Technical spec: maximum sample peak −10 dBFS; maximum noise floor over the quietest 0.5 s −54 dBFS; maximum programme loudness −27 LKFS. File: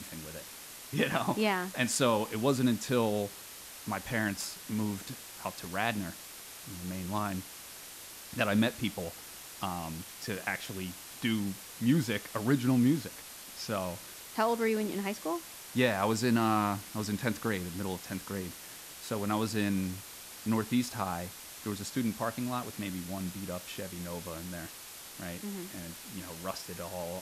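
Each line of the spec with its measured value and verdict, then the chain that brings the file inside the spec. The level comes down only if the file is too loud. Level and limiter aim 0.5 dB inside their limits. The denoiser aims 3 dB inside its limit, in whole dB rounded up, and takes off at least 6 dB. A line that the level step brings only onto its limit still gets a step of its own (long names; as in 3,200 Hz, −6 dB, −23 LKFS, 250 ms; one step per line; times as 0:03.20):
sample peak −13.0 dBFS: in spec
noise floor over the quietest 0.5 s −47 dBFS: out of spec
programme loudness −33.5 LKFS: in spec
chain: broadband denoise 10 dB, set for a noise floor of −47 dBFS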